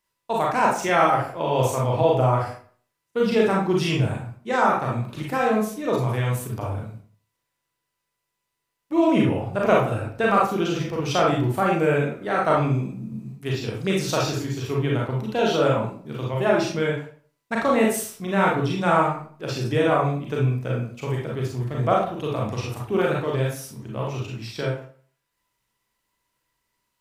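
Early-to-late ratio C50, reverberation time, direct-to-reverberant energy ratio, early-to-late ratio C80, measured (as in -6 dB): 2.0 dB, 0.50 s, -3.5 dB, 8.5 dB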